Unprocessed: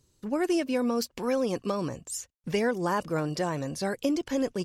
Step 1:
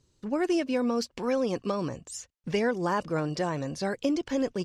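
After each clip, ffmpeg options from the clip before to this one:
ffmpeg -i in.wav -af "lowpass=6800" out.wav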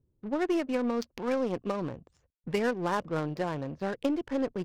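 ffmpeg -i in.wav -af "adynamicsmooth=sensitivity=6.5:basefreq=570,aeval=exprs='0.158*(cos(1*acos(clip(val(0)/0.158,-1,1)))-cos(1*PI/2))+0.0158*(cos(3*acos(clip(val(0)/0.158,-1,1)))-cos(3*PI/2))+0.002*(cos(8*acos(clip(val(0)/0.158,-1,1)))-cos(8*PI/2))':channel_layout=same" out.wav

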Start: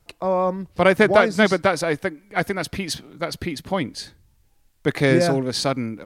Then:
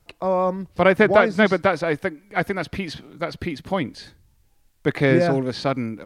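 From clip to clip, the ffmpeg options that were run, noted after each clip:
ffmpeg -i in.wav -filter_complex "[0:a]acrossover=split=3800[link_01][link_02];[link_02]acompressor=threshold=-47dB:ratio=4:attack=1:release=60[link_03];[link_01][link_03]amix=inputs=2:normalize=0" out.wav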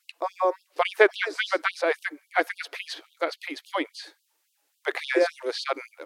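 ffmpeg -i in.wav -af "afftfilt=real='re*gte(b*sr/1024,260*pow(2800/260,0.5+0.5*sin(2*PI*3.6*pts/sr)))':imag='im*gte(b*sr/1024,260*pow(2800/260,0.5+0.5*sin(2*PI*3.6*pts/sr)))':win_size=1024:overlap=0.75" out.wav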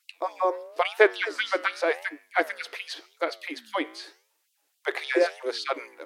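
ffmpeg -i in.wav -af "flanger=delay=9.4:depth=8.2:regen=-87:speed=0.91:shape=sinusoidal,volume=4dB" out.wav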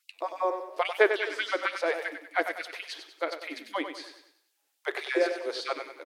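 ffmpeg -i in.wav -af "aecho=1:1:96|192|288|384|480:0.376|0.162|0.0695|0.0299|0.0128,volume=-3.5dB" out.wav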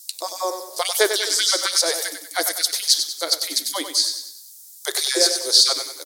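ffmpeg -i in.wav -af "aexciter=amount=11:drive=9.8:freq=4100,volume=2.5dB" out.wav

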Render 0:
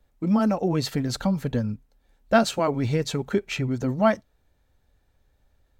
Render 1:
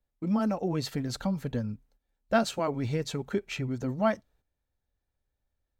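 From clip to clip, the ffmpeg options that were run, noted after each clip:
ffmpeg -i in.wav -af "agate=range=-11dB:threshold=-55dB:ratio=16:detection=peak,volume=-6dB" out.wav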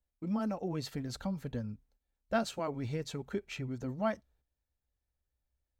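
ffmpeg -i in.wav -af "equalizer=frequency=62:width_type=o:width=0.33:gain=12,volume=-6.5dB" out.wav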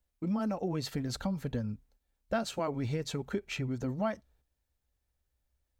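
ffmpeg -i in.wav -af "acompressor=threshold=-34dB:ratio=3,volume=5dB" out.wav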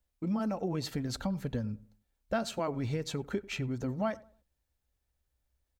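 ffmpeg -i in.wav -filter_complex "[0:a]asplit=2[link_01][link_02];[link_02]adelay=95,lowpass=frequency=1300:poles=1,volume=-19.5dB,asplit=2[link_03][link_04];[link_04]adelay=95,lowpass=frequency=1300:poles=1,volume=0.34,asplit=2[link_05][link_06];[link_06]adelay=95,lowpass=frequency=1300:poles=1,volume=0.34[link_07];[link_01][link_03][link_05][link_07]amix=inputs=4:normalize=0" out.wav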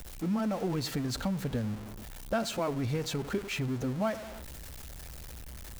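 ffmpeg -i in.wav -af "aeval=exprs='val(0)+0.5*0.0133*sgn(val(0))':channel_layout=same" out.wav

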